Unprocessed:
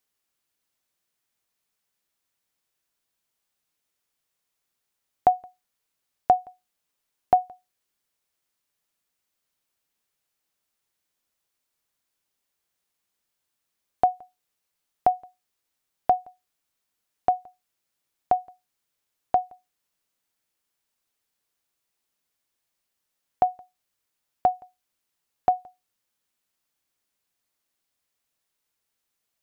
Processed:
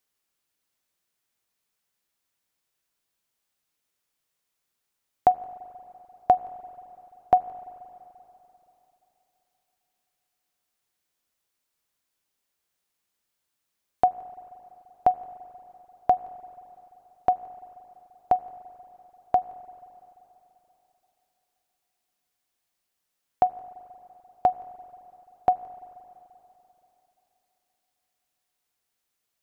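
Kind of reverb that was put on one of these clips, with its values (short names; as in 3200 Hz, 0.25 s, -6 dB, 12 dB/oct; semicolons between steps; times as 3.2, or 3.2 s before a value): spring tank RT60 3.4 s, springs 37/43/48 ms, chirp 55 ms, DRR 16 dB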